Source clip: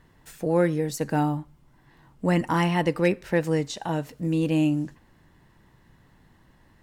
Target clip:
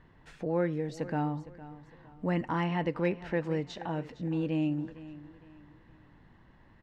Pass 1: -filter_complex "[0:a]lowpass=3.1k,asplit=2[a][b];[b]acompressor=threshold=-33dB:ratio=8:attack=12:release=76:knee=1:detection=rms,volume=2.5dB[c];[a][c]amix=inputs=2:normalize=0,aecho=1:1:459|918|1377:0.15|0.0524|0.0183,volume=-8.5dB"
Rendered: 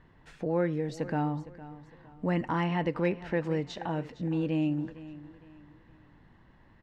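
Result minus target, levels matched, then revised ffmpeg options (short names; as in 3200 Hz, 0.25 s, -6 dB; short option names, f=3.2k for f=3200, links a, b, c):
compressor: peak gain reduction -7.5 dB
-filter_complex "[0:a]lowpass=3.1k,asplit=2[a][b];[b]acompressor=threshold=-41.5dB:ratio=8:attack=12:release=76:knee=1:detection=rms,volume=2.5dB[c];[a][c]amix=inputs=2:normalize=0,aecho=1:1:459|918|1377:0.15|0.0524|0.0183,volume=-8.5dB"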